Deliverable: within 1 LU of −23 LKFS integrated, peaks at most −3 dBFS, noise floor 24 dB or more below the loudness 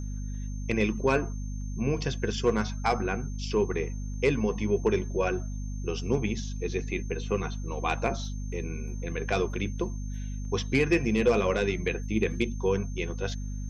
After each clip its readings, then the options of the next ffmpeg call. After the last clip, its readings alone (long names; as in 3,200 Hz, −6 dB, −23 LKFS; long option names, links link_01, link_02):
mains hum 50 Hz; hum harmonics up to 250 Hz; level of the hum −31 dBFS; interfering tone 6,300 Hz; level of the tone −51 dBFS; integrated loudness −29.5 LKFS; sample peak −12.5 dBFS; target loudness −23.0 LKFS
→ -af "bandreject=frequency=50:width_type=h:width=6,bandreject=frequency=100:width_type=h:width=6,bandreject=frequency=150:width_type=h:width=6,bandreject=frequency=200:width_type=h:width=6,bandreject=frequency=250:width_type=h:width=6"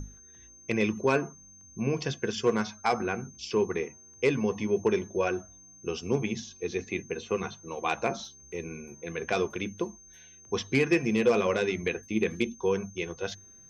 mains hum none found; interfering tone 6,300 Hz; level of the tone −51 dBFS
→ -af "bandreject=frequency=6300:width=30"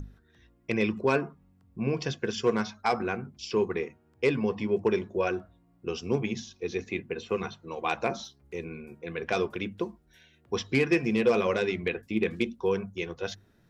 interfering tone none found; integrated loudness −30.0 LKFS; sample peak −13.5 dBFS; target loudness −23.0 LKFS
→ -af "volume=7dB"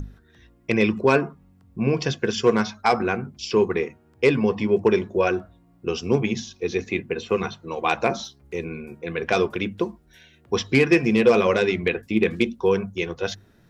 integrated loudness −23.0 LKFS; sample peak −6.5 dBFS; background noise floor −57 dBFS